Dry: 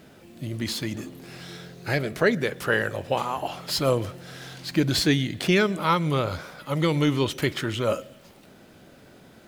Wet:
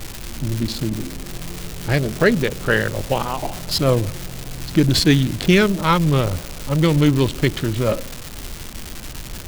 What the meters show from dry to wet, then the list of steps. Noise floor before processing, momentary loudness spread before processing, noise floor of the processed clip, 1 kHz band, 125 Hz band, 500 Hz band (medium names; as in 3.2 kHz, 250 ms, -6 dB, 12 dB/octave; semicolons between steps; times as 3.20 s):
-52 dBFS, 16 LU, -33 dBFS, +3.5 dB, +9.0 dB, +4.5 dB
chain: local Wiener filter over 25 samples; bass shelf 380 Hz +10.5 dB; crackle 430 per s -27 dBFS; tilt shelf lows -4 dB, about 1.1 kHz; added noise brown -35 dBFS; trim +3.5 dB